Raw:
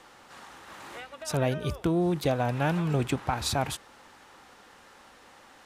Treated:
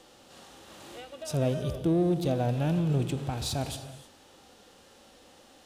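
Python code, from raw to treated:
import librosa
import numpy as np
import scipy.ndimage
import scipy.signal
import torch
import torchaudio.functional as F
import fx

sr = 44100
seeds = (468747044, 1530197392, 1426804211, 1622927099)

p1 = fx.hpss(x, sr, part='percussive', gain_db=-7)
p2 = fx.band_shelf(p1, sr, hz=1400.0, db=-9.5, octaves=1.7)
p3 = fx.rev_gated(p2, sr, seeds[0], gate_ms=340, shape='flat', drr_db=10.0)
p4 = 10.0 ** (-35.5 / 20.0) * np.tanh(p3 / 10.0 ** (-35.5 / 20.0))
y = p3 + F.gain(torch.from_numpy(p4), -6.0).numpy()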